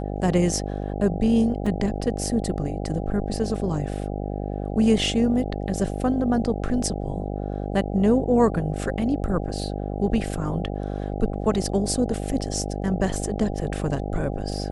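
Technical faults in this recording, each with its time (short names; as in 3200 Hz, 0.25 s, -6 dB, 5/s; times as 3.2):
buzz 50 Hz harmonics 16 -29 dBFS
1.66 gap 4.4 ms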